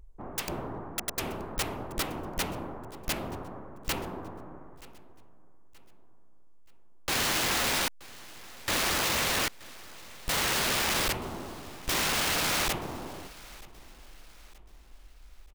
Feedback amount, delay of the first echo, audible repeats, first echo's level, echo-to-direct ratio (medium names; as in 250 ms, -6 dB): 40%, 927 ms, 2, -21.0 dB, -20.5 dB